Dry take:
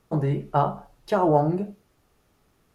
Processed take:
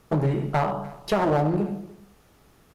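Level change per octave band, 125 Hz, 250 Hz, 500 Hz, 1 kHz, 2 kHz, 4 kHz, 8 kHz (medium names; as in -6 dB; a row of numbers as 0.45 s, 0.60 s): +0.5 dB, +0.5 dB, -1.0 dB, -2.0 dB, +6.0 dB, +6.5 dB, no reading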